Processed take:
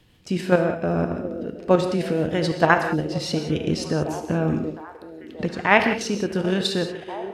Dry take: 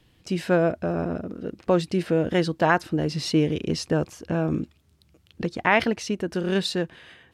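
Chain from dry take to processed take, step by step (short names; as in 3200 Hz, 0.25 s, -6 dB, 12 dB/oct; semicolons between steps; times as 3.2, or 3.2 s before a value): 2.98–3.47 compressor 12:1, threshold -24 dBFS, peak gain reduction 9.5 dB; on a send: delay with a stepping band-pass 0.716 s, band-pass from 400 Hz, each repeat 0.7 oct, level -10 dB; on the sum: level quantiser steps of 9 dB; non-linear reverb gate 0.21 s flat, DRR 6 dB; gain +5 dB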